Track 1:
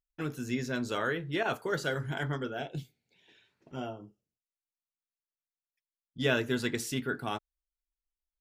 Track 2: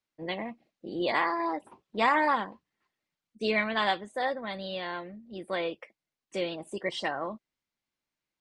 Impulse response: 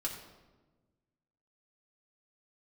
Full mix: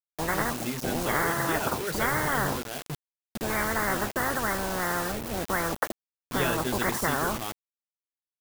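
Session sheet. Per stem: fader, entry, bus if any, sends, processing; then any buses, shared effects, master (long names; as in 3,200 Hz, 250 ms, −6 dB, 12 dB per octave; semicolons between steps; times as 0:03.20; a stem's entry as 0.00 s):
−2.5 dB, 0.15 s, no send, upward compression, threshold −34 dBFS
+1.0 dB, 0.00 s, no send, Butterworth low-pass 1,600 Hz 72 dB per octave; every bin compressed towards the loudest bin 10 to 1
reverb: not used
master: low-shelf EQ 260 Hz +2.5 dB; bit reduction 6 bits; high-shelf EQ 7,900 Hz +8.5 dB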